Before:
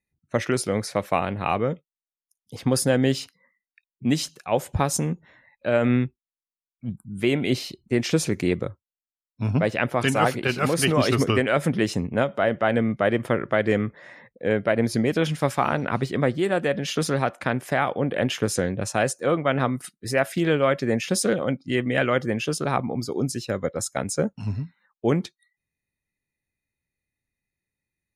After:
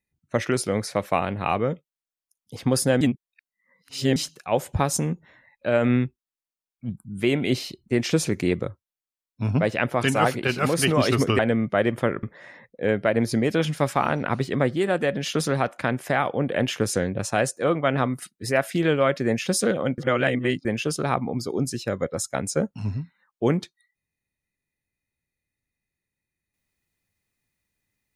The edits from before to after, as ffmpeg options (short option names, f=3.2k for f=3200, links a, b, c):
-filter_complex "[0:a]asplit=7[a][b][c][d][e][f][g];[a]atrim=end=3.012[h];[b]atrim=start=3.008:end=4.162,asetpts=PTS-STARTPTS,areverse[i];[c]atrim=start=4.158:end=11.392[j];[d]atrim=start=12.658:end=13.502[k];[e]atrim=start=13.848:end=21.602[l];[f]atrim=start=21.598:end=22.272,asetpts=PTS-STARTPTS,areverse[m];[g]atrim=start=22.268[n];[h][i]acrossfade=d=0.004:c1=hsin:c2=hsin[o];[o][j]acrossfade=d=0.004:c1=hsin:c2=hsin[p];[p][k]acrossfade=d=0.004:c1=hsin:c2=hsin[q];[q][l]acrossfade=d=0.004:c1=hsin:c2=hsin[r];[r][m]acrossfade=d=0.004:c1=hsin:c2=hsin[s];[s][n]acrossfade=d=0.004:c1=hsin:c2=hsin"